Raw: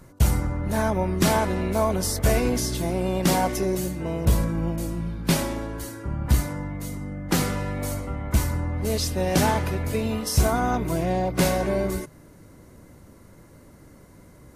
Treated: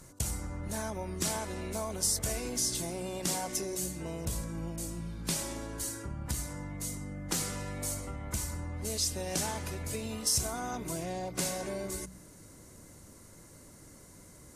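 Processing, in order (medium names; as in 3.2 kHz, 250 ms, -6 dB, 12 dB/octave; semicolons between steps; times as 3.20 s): de-hum 62.59 Hz, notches 4; compression 2.5:1, threshold -32 dBFS, peak gain reduction 11.5 dB; peaking EQ 7.7 kHz +14 dB 1.7 oct; trim -5.5 dB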